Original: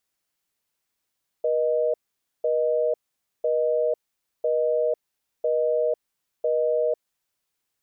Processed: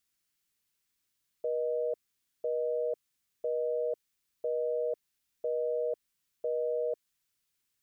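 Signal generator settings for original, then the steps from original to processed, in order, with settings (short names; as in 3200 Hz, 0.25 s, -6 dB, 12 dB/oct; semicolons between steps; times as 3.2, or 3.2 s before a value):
call progress tone busy tone, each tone -22.5 dBFS 5.82 s
bell 680 Hz -10.5 dB 1.6 oct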